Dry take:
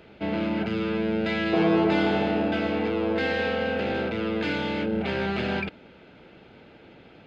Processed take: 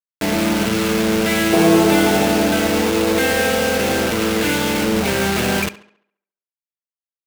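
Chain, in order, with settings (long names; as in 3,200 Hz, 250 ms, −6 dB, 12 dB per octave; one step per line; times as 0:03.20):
bit reduction 5 bits
on a send: tape delay 71 ms, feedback 48%, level −17 dB, low-pass 5,200 Hz
on the sum: level +8 dB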